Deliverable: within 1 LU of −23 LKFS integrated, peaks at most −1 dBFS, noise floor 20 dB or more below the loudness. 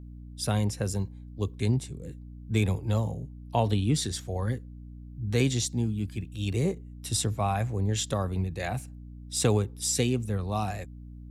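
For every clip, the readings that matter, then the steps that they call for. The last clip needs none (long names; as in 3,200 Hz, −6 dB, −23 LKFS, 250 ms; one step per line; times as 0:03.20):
mains hum 60 Hz; hum harmonics up to 300 Hz; level of the hum −42 dBFS; integrated loudness −29.5 LKFS; sample peak −11.0 dBFS; target loudness −23.0 LKFS
→ hum removal 60 Hz, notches 5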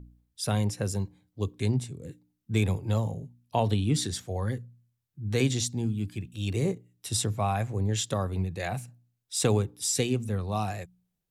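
mains hum none found; integrated loudness −29.5 LKFS; sample peak −12.0 dBFS; target loudness −23.0 LKFS
→ level +6.5 dB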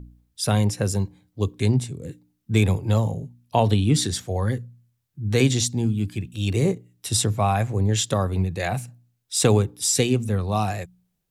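integrated loudness −23.0 LKFS; sample peak −5.5 dBFS; background noise floor −74 dBFS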